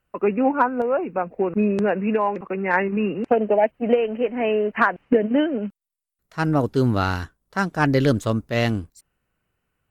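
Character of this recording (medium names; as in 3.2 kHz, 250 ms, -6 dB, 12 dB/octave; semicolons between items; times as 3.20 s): noise floor -78 dBFS; spectral tilt -3.5 dB/octave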